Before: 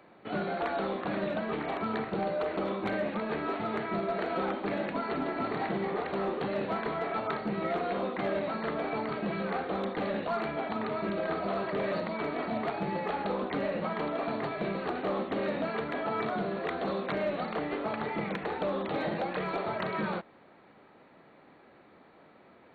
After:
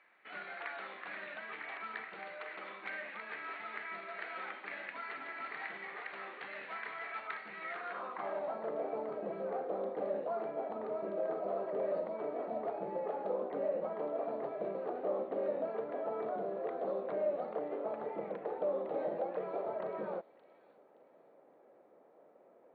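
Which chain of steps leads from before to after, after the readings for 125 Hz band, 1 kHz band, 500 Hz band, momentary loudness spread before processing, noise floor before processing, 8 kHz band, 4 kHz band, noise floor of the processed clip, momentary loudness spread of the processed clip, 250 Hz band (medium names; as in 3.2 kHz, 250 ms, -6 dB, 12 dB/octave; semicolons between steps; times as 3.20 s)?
-18.5 dB, -8.5 dB, -4.5 dB, 2 LU, -58 dBFS, no reading, under -10 dB, -63 dBFS, 8 LU, -14.0 dB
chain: band-pass sweep 2 kHz -> 540 Hz, 7.66–8.73 s; feedback echo behind a high-pass 571 ms, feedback 33%, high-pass 2.7 kHz, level -11 dB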